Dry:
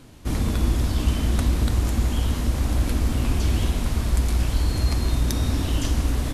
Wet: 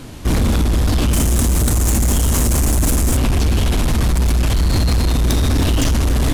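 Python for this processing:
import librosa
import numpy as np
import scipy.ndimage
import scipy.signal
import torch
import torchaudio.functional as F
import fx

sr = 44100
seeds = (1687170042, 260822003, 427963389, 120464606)

p1 = fx.high_shelf_res(x, sr, hz=5500.0, db=9.5, q=1.5, at=(1.13, 3.17))
p2 = fx.over_compress(p1, sr, threshold_db=-24.0, ratio=-1.0)
p3 = p1 + F.gain(torch.from_numpy(p2), 1.5).numpy()
p4 = np.clip(10.0 ** (16.5 / 20.0) * p3, -1.0, 1.0) / 10.0 ** (16.5 / 20.0)
y = F.gain(torch.from_numpy(p4), 4.5).numpy()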